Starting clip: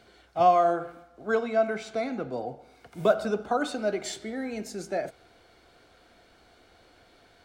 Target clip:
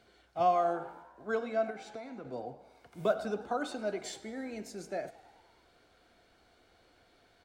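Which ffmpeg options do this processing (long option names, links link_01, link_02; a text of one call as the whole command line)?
ffmpeg -i in.wav -filter_complex "[0:a]asettb=1/sr,asplit=3[link_01][link_02][link_03];[link_01]atrim=end=1.704[link_04];[link_02]atrim=start=1.7:end=2.25,asetpts=PTS-STARTPTS,afade=type=in:duration=0.004:curve=qsin,afade=type=out:start_time=0.546:duration=0.004:curve=qsin,acompressor=threshold=-34dB:ratio=6[link_05];[link_03]atrim=start=2.246[link_06];[link_04][link_05]acrossfade=duration=0.004:curve1=hsin:curve2=qsin[link_07];[link_07][link_06]acrossfade=duration=0.004:curve1=qsin:curve2=hsin,asplit=7[link_08][link_09][link_10][link_11][link_12][link_13][link_14];[link_09]adelay=102,afreqshift=58,volume=-19.5dB[link_15];[link_10]adelay=204,afreqshift=116,volume=-23.5dB[link_16];[link_11]adelay=306,afreqshift=174,volume=-27.5dB[link_17];[link_12]adelay=408,afreqshift=232,volume=-31.5dB[link_18];[link_13]adelay=510,afreqshift=290,volume=-35.6dB[link_19];[link_14]adelay=612,afreqshift=348,volume=-39.6dB[link_20];[link_08][link_15][link_16][link_17][link_18][link_19][link_20]amix=inputs=7:normalize=0,volume=-7dB" out.wav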